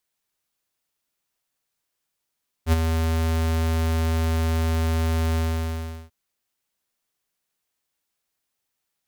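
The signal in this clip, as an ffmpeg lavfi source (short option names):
-f lavfi -i "aevalsrc='0.168*(2*lt(mod(81.1*t,1),0.5)-1)':d=3.441:s=44100,afade=t=in:d=0.064,afade=t=out:st=0.064:d=0.025:silence=0.473,afade=t=out:st=2.7:d=0.741"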